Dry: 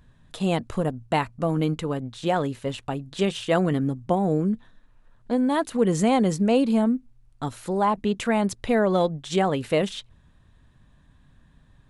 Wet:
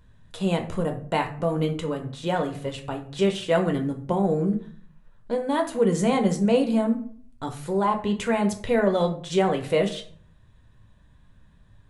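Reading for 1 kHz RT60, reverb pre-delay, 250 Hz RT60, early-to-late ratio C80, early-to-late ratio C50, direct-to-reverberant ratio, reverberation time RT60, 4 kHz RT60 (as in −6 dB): 0.50 s, 10 ms, 0.70 s, 15.5 dB, 11.0 dB, 3.5 dB, 0.55 s, 0.30 s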